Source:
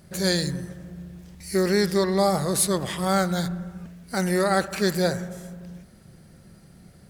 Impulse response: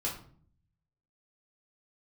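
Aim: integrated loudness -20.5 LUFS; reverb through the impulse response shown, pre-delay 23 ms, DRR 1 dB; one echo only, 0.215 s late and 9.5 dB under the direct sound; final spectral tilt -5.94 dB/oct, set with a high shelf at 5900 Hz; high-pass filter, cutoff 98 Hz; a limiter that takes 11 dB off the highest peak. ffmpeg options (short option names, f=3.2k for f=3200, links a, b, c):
-filter_complex "[0:a]highpass=98,highshelf=f=5.9k:g=-7.5,alimiter=limit=-19.5dB:level=0:latency=1,aecho=1:1:215:0.335,asplit=2[a][b];[1:a]atrim=start_sample=2205,adelay=23[c];[b][c]afir=irnorm=-1:irlink=0,volume=-5dB[d];[a][d]amix=inputs=2:normalize=0,volume=6.5dB"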